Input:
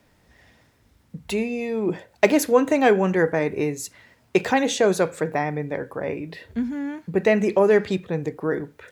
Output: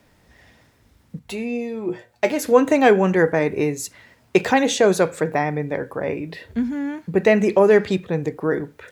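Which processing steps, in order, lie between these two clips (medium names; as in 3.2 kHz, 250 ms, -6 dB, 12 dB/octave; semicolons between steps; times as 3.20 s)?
1.19–2.45 s: feedback comb 120 Hz, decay 0.15 s, harmonics all, mix 80%; trim +3 dB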